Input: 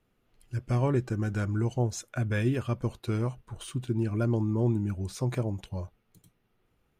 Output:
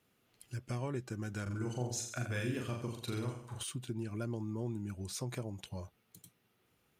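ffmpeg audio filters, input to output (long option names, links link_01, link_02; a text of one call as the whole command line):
ffmpeg -i in.wav -filter_complex "[0:a]highpass=93,highshelf=frequency=2400:gain=9,acompressor=threshold=-41dB:ratio=2,asettb=1/sr,asplit=3[link_01][link_02][link_03];[link_01]atrim=end=1.424[link_04];[link_02]atrim=start=1.42:end=3.63,asetpts=PTS-STARTPTS,afade=type=in:duration=0.004:curve=qsin,afade=type=out:start_time=2.206:duration=0.004:curve=qsin,aecho=1:1:40|84|132.4|185.6|244.2:0.631|0.398|0.251|0.158|0.1,atrim=end_sample=97461[link_05];[link_03]atrim=start=3.626[link_06];[link_04][link_05]acrossfade=duration=0.004:curve1=hsin:curve2=qsin[link_07];[link_07][link_06]acrossfade=duration=0.004:curve1=qsin:curve2=hsin,volume=-1.5dB" out.wav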